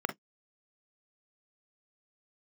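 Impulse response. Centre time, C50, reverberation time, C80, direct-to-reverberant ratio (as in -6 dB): 10 ms, 15.0 dB, 0.10 s, 38.5 dB, 6.0 dB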